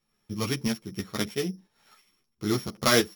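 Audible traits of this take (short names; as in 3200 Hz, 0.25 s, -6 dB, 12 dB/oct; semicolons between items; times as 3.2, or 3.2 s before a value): a buzz of ramps at a fixed pitch in blocks of 8 samples; tremolo saw up 3 Hz, depth 55%; a shimmering, thickened sound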